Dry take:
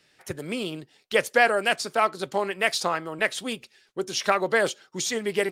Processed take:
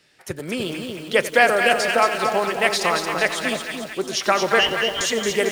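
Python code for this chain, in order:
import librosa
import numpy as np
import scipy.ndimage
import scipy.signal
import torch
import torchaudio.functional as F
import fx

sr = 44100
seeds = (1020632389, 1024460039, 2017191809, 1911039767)

y = fx.freq_invert(x, sr, carrier_hz=3400, at=(4.59, 5.01))
y = fx.echo_split(y, sr, split_hz=800.0, low_ms=296, high_ms=225, feedback_pct=52, wet_db=-5)
y = fx.echo_crushed(y, sr, ms=90, feedback_pct=80, bits=6, wet_db=-14.0)
y = y * librosa.db_to_amplitude(3.5)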